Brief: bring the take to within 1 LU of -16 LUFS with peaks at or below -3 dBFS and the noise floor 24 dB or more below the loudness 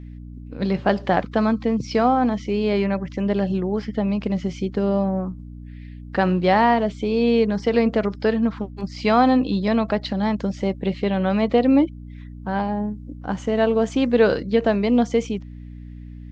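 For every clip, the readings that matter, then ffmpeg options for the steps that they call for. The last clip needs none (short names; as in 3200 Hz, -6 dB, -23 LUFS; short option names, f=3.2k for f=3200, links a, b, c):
hum 60 Hz; harmonics up to 300 Hz; hum level -35 dBFS; loudness -21.5 LUFS; peak -4.0 dBFS; loudness target -16.0 LUFS
-> -af "bandreject=f=60:t=h:w=4,bandreject=f=120:t=h:w=4,bandreject=f=180:t=h:w=4,bandreject=f=240:t=h:w=4,bandreject=f=300:t=h:w=4"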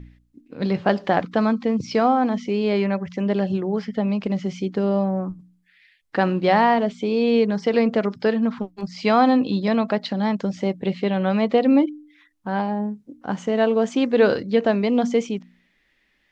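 hum none; loudness -21.5 LUFS; peak -4.5 dBFS; loudness target -16.0 LUFS
-> -af "volume=5.5dB,alimiter=limit=-3dB:level=0:latency=1"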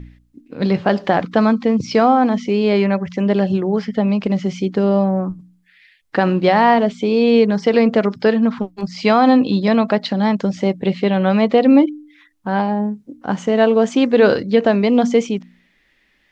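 loudness -16.5 LUFS; peak -3.0 dBFS; noise floor -60 dBFS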